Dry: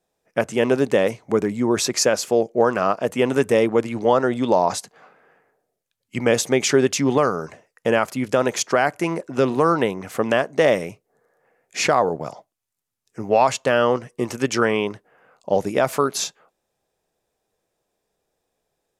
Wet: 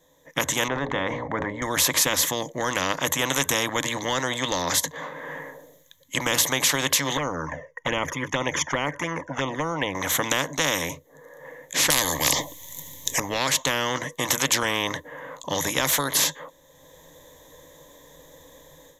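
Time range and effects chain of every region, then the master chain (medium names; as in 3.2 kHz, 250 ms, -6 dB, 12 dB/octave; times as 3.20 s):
0.68–1.62 s: low-pass 1.1 kHz + hum notches 60/120/180/240/300/360/420/480/540/600 Hz + decay stretcher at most 91 dB/s
7.17–9.95 s: boxcar filter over 11 samples + touch-sensitive flanger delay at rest 2.3 ms, full sweep at -14.5 dBFS
11.90–13.20 s: Butterworth band-stop 1.4 kHz, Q 1.7 + spectrum-flattening compressor 4:1
whole clip: rippled EQ curve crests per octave 1.1, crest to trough 16 dB; level rider gain up to 11.5 dB; spectrum-flattening compressor 4:1; trim -1 dB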